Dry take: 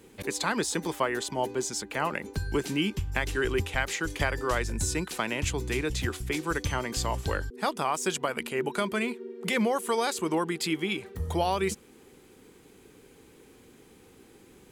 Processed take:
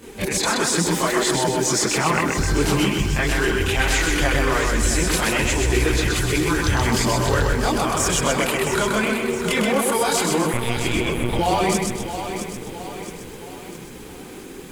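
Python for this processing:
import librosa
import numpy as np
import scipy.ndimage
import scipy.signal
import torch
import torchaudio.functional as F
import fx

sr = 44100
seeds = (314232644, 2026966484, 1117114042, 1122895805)

p1 = fx.over_compress(x, sr, threshold_db=-36.0, ratio=-1.0)
p2 = x + (p1 * librosa.db_to_amplitude(2.5))
p3 = fx.chorus_voices(p2, sr, voices=4, hz=0.5, base_ms=26, depth_ms=3.8, mix_pct=65)
p4 = p3 + fx.echo_feedback(p3, sr, ms=128, feedback_pct=45, wet_db=-3.5, dry=0)
p5 = fx.lpc_monotone(p4, sr, seeds[0], pitch_hz=120.0, order=10, at=(10.53, 11.39))
p6 = fx.echo_crushed(p5, sr, ms=667, feedback_pct=55, bits=8, wet_db=-9)
y = p6 * librosa.db_to_amplitude(6.0)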